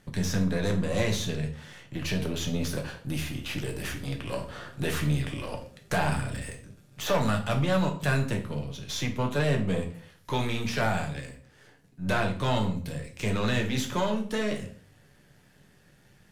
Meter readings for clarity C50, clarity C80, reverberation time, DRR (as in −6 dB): 10.5 dB, 14.5 dB, 0.50 s, 2.0 dB